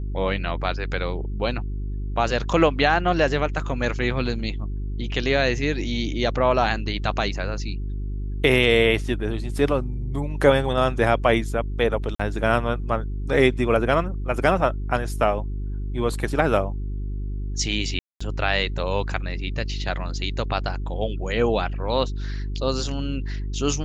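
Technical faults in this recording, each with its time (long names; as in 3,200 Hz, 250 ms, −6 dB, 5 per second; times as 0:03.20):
mains hum 50 Hz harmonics 8 −28 dBFS
0:12.15–0:12.20: drop-out 45 ms
0:17.99–0:18.20: drop-out 215 ms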